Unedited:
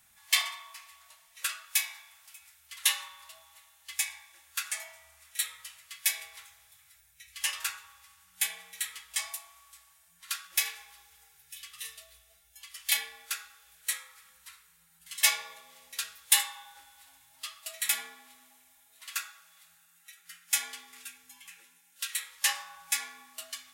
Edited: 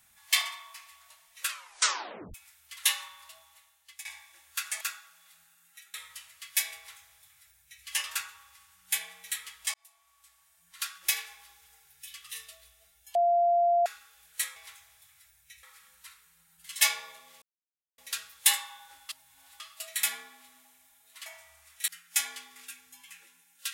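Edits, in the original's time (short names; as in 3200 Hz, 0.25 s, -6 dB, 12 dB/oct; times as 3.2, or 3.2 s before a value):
1.48 tape stop 0.86 s
3.06–4.05 fade out equal-power, to -18.5 dB
4.81–5.43 swap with 19.12–20.25
6.26–7.33 copy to 14.05
9.23–10.29 fade in
12.64–13.35 bleep 693 Hz -20.5 dBFS
15.84 insert silence 0.56 s
16.95–17.46 reverse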